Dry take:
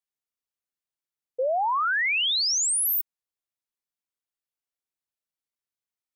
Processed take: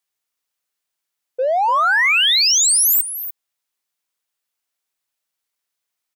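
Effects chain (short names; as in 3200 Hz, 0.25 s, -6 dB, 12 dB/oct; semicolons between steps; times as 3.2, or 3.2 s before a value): low shelf 400 Hz -9.5 dB; notches 60/120/180/240/300/360/420/480 Hz; in parallel at -6 dB: soft clip -37 dBFS, distortion -9 dB; on the sum: echo 0.294 s -12 dB; gain +8.5 dB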